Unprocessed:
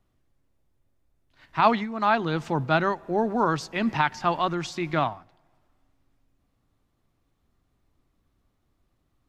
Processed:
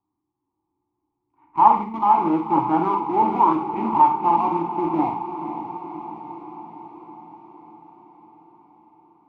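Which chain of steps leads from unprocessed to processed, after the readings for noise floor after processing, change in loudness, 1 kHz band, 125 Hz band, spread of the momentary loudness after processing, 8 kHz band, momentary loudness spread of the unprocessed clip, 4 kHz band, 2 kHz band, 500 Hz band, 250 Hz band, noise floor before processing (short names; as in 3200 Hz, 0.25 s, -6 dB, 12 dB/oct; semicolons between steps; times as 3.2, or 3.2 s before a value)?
-80 dBFS, +5.0 dB, +8.5 dB, -4.5 dB, 19 LU, under -20 dB, 6 LU, under -10 dB, -12.5 dB, -1.5 dB, +4.5 dB, -73 dBFS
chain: low-pass sweep 1100 Hz -> 270 Hz, 3.98–6.99; thirty-one-band EQ 100 Hz +10 dB, 250 Hz -11 dB, 630 Hz -5 dB, 2000 Hz -6 dB; in parallel at -7 dB: Schmitt trigger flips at -29 dBFS; on the sum: vowel filter u; notches 50/100/150 Hz; on a send: diffused feedback echo 0.507 s, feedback 65%, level -10 dB; on the sum: Schroeder reverb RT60 0.39 s, combs from 32 ms, DRR 4 dB; AGC gain up to 5.5 dB; high shelf 5300 Hz -7.5 dB; Doppler distortion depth 0.1 ms; gain +6 dB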